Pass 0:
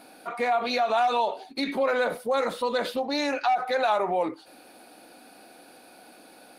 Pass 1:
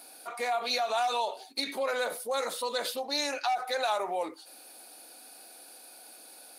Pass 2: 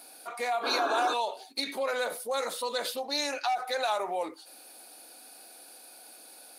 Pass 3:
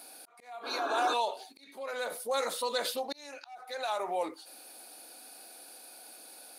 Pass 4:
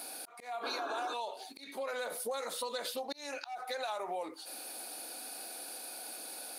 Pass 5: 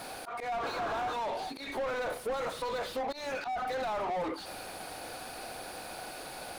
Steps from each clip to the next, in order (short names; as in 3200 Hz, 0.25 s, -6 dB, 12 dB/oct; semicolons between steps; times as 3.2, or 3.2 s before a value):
tone controls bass -14 dB, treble +14 dB; gain -5.5 dB
painted sound noise, 0.63–1.14, 260–1700 Hz -32 dBFS
auto swell 0.756 s
compressor 8:1, threshold -41 dBFS, peak gain reduction 16 dB; gain +6 dB
overdrive pedal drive 31 dB, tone 1000 Hz, clips at -25 dBFS